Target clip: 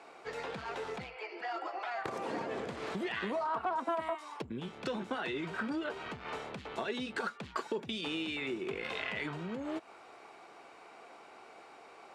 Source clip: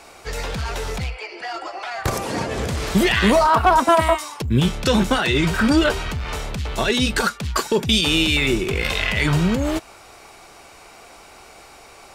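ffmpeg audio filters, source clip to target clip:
-af "highshelf=f=3000:g=-11.5,acompressor=threshold=0.0562:ratio=6,highpass=260,lowpass=7700,equalizer=f=5700:t=o:w=0.64:g=-4,bandreject=f=580:w=19,volume=0.473"

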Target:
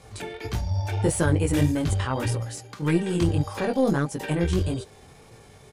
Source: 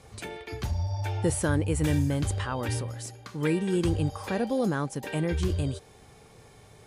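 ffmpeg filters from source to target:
-af "flanger=delay=17.5:depth=5.8:speed=1.4,aeval=exprs='0.168*(cos(1*acos(clip(val(0)/0.168,-1,1)))-cos(1*PI/2))+0.00841*(cos(4*acos(clip(val(0)/0.168,-1,1)))-cos(4*PI/2))':c=same,atempo=1.2,volume=2.11"

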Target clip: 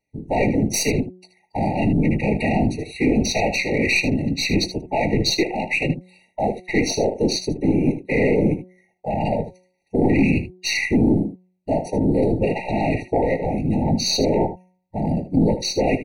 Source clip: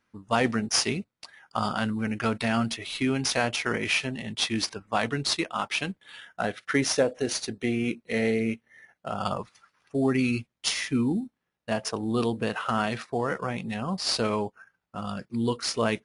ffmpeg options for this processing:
-filter_complex "[0:a]apsyclip=15,afwtdn=0.282,afftfilt=real='hypot(re,im)*cos(2*PI*random(0))':imag='hypot(re,im)*sin(2*PI*random(1))':win_size=512:overlap=0.75,aeval=exprs='(tanh(2*val(0)+0.2)-tanh(0.2))/2':c=same,bandreject=f=183:t=h:w=4,bandreject=f=366:t=h:w=4,bandreject=f=549:t=h:w=4,bandreject=f=732:t=h:w=4,bandreject=f=915:t=h:w=4,bandreject=f=1098:t=h:w=4,asplit=2[s0][s1];[s1]aecho=0:1:19|77:0.266|0.251[s2];[s0][s2]amix=inputs=2:normalize=0,afftfilt=real='re*eq(mod(floor(b*sr/1024/940),2),0)':imag='im*eq(mod(floor(b*sr/1024/940),2),0)':win_size=1024:overlap=0.75,volume=0.631"

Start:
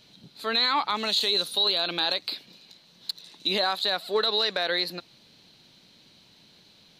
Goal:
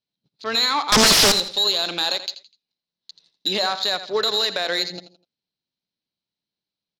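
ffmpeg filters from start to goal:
-filter_complex "[0:a]agate=range=0.112:threshold=0.00501:ratio=16:detection=peak,afwtdn=0.0158,asettb=1/sr,asplit=3[s0][s1][s2];[s0]atrim=end=0.924[s3];[s1]atrim=start=0.92:end=1.32,asetpts=PTS-STARTPTS,afade=t=in:d=0.004:c=qsin,afade=t=out:st=0.396:d=0.004:c=qsin,aeval=exprs='0.211*sin(PI/2*10*val(0)/0.211)':c=same[s4];[s2]atrim=start=1.316[s5];[s3][s4]acrossfade=d=0.004:c1=hsin:c2=qsin[s6];[s6][s5]acrossfade=d=0.004:c1=qsin:c2=hsin,asplit=3[s7][s8][s9];[s7]afade=t=out:st=2.3:d=0.02[s10];[s8]acompressor=threshold=0.00447:ratio=6,afade=t=in:st=2.3:d=0.02,afade=t=out:st=3.1:d=0.02[s11];[s9]afade=t=in:st=3.1:d=0.02[s12];[s10][s11][s12]amix=inputs=3:normalize=0,aecho=1:1:83|166|249:0.251|0.0804|0.0257,adynamicsmooth=sensitivity=2:basefreq=6500,equalizer=f=5300:w=2.6:g=7.5,volume=1.33"

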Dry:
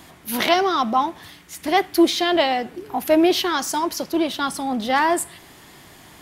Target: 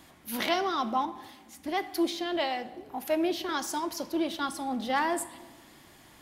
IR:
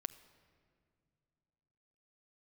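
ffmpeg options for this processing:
-filter_complex "[0:a]asettb=1/sr,asplit=3[s0][s1][s2];[s0]atrim=end=1.054[s3];[s1]atrim=start=1.05:end=3.49,asetpts=PTS-STARTPTS,afade=t=in:d=0.004:c=qsin,afade=t=out:st=2.436:d=0.004:c=qsin,acrossover=split=550[s4][s5];[s4]aeval=exprs='val(0)*(1-0.5/2+0.5/2*cos(2*PI*1.7*n/s))':c=same[s6];[s5]aeval=exprs='val(0)*(1-0.5/2-0.5/2*cos(2*PI*1.7*n/s))':c=same[s7];[s6][s7]amix=inputs=2:normalize=0[s8];[s2]atrim=start=3.486[s9];[s3][s8]acrossfade=d=0.004:c1=hsin:c2=qsin[s10];[s10][s9]acrossfade=d=0.004:c1=qsin:c2=hsin[s11];[1:a]atrim=start_sample=2205,asetrate=79380,aresample=44100[s12];[s11][s12]afir=irnorm=-1:irlink=0,volume=0.841"

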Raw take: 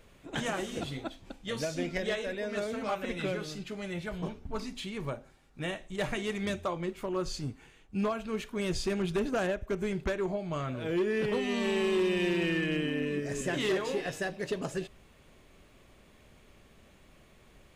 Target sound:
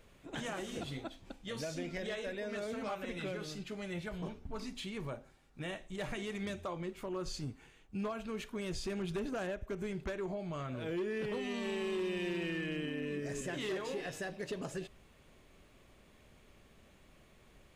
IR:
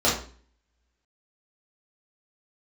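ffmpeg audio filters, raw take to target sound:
-af "alimiter=level_in=1.5:limit=0.0631:level=0:latency=1:release=64,volume=0.668,volume=0.668"

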